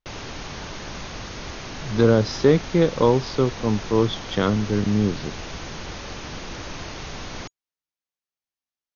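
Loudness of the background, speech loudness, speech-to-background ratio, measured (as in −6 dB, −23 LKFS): −34.5 LKFS, −21.0 LKFS, 13.5 dB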